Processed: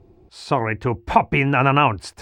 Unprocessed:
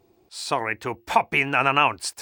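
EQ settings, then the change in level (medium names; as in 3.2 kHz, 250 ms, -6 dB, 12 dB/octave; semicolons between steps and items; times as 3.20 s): RIAA curve playback; +3.0 dB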